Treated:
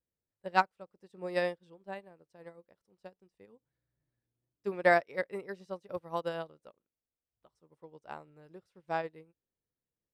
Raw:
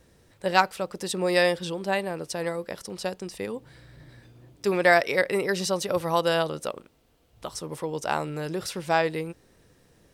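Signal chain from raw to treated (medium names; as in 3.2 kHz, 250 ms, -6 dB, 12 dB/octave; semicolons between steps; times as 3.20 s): treble shelf 2.9 kHz -11.5 dB; upward expansion 2.5:1, over -39 dBFS; trim -2.5 dB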